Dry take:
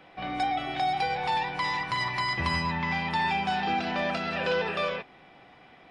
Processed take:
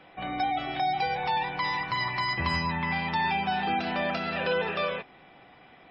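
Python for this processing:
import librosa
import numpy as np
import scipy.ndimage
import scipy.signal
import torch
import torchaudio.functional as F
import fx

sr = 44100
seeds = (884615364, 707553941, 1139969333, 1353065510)

y = fx.spec_gate(x, sr, threshold_db=-30, keep='strong')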